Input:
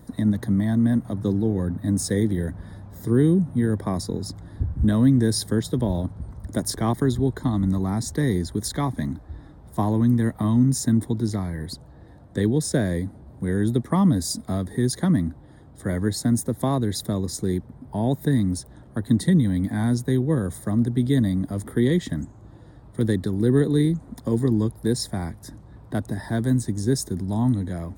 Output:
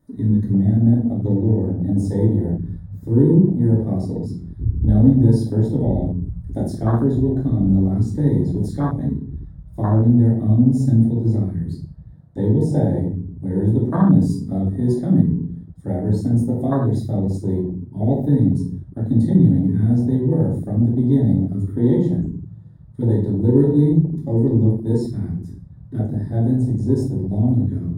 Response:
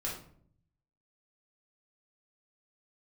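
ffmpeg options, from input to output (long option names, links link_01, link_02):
-filter_complex "[1:a]atrim=start_sample=2205[link_01];[0:a][link_01]afir=irnorm=-1:irlink=0,afwtdn=0.0891"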